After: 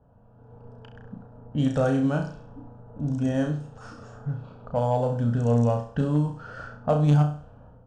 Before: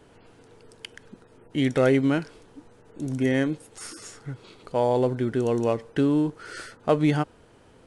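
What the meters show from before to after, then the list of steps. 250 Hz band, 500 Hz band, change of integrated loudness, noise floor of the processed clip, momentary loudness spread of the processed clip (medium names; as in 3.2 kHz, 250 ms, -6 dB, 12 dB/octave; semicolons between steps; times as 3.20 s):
-1.5 dB, -3.0 dB, -0.5 dB, -54 dBFS, 22 LU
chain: static phaser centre 870 Hz, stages 4; level-controlled noise filter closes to 1.1 kHz, open at -26 dBFS; distance through air 140 m; in parallel at 0 dB: compression, threshold -41 dBFS, peak gain reduction 19.5 dB; on the sum: graphic EQ 1/4/8 kHz -8/-9/+7 dB; on a send: flutter echo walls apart 5.8 m, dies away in 0.43 s; on the sum: level rider gain up to 10.5 dB; Chebyshev shaper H 3 -19 dB, 5 -27 dB, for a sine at -4 dBFS; trim -4.5 dB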